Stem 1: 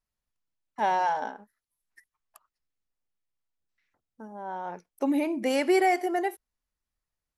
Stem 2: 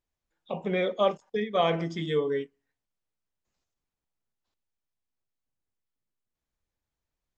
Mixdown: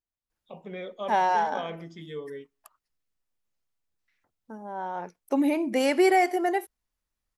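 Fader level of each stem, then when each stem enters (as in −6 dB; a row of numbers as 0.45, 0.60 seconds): +2.0, −10.5 decibels; 0.30, 0.00 seconds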